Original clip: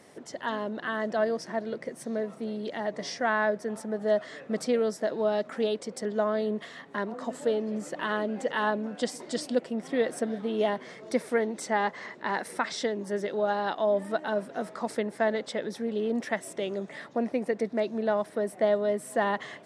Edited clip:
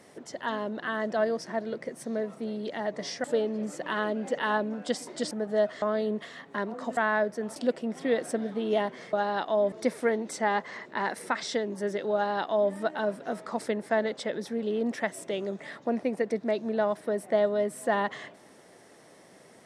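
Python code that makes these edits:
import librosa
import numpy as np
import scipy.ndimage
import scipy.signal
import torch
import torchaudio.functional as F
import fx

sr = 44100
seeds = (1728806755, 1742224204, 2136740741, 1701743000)

y = fx.edit(x, sr, fx.swap(start_s=3.24, length_s=0.59, other_s=7.37, other_length_s=2.07),
    fx.cut(start_s=4.34, length_s=1.88),
    fx.duplicate(start_s=13.43, length_s=0.59, to_s=11.01), tone=tone)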